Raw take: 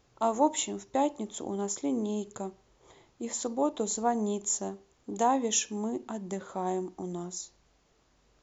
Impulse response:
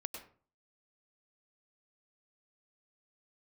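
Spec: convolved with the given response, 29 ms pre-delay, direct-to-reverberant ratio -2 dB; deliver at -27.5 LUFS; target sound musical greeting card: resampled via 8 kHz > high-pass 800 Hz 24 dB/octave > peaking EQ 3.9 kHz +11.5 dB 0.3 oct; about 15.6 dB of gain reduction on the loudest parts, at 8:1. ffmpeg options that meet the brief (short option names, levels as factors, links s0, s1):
-filter_complex "[0:a]acompressor=threshold=0.0178:ratio=8,asplit=2[s0][s1];[1:a]atrim=start_sample=2205,adelay=29[s2];[s1][s2]afir=irnorm=-1:irlink=0,volume=1.5[s3];[s0][s3]amix=inputs=2:normalize=0,aresample=8000,aresample=44100,highpass=f=800:w=0.5412,highpass=f=800:w=1.3066,equalizer=f=3900:t=o:w=0.3:g=11.5,volume=7.5"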